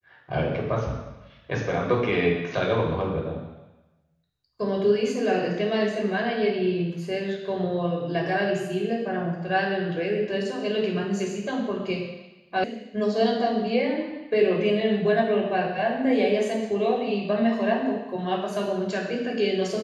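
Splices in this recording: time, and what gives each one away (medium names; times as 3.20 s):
12.64 s: sound stops dead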